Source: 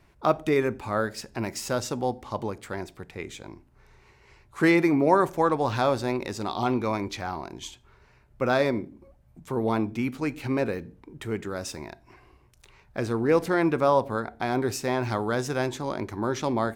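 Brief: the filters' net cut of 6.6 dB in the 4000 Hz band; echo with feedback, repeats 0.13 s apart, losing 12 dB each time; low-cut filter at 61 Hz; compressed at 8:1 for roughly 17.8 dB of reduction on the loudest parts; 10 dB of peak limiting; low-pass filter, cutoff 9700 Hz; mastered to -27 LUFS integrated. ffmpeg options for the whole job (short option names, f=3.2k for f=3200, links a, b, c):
-af "highpass=61,lowpass=9.7k,equalizer=f=4k:t=o:g=-8.5,acompressor=threshold=-35dB:ratio=8,alimiter=level_in=6dB:limit=-24dB:level=0:latency=1,volume=-6dB,aecho=1:1:130|260|390:0.251|0.0628|0.0157,volume=15dB"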